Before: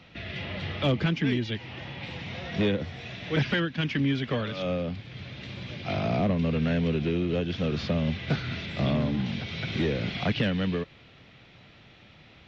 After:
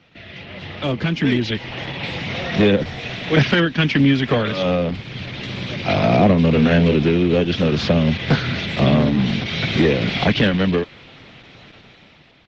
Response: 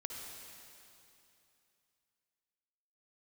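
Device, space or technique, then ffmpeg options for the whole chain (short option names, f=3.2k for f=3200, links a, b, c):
video call: -filter_complex "[0:a]asplit=3[a][b][c];[a]afade=t=out:st=6.53:d=0.02[d];[b]asplit=2[e][f];[f]adelay=34,volume=-6.5dB[g];[e][g]amix=inputs=2:normalize=0,afade=t=in:st=6.53:d=0.02,afade=t=out:st=6.95:d=0.02[h];[c]afade=t=in:st=6.95:d=0.02[i];[d][h][i]amix=inputs=3:normalize=0,highpass=f=120:p=1,dynaudnorm=f=470:g=5:m=14.5dB" -ar 48000 -c:a libopus -b:a 12k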